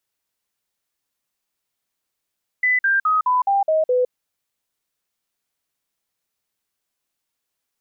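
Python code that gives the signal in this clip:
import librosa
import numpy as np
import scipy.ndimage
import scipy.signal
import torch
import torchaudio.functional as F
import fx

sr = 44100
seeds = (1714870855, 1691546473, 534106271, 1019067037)

y = fx.stepped_sweep(sr, from_hz=2000.0, direction='down', per_octave=3, tones=7, dwell_s=0.16, gap_s=0.05, level_db=-14.5)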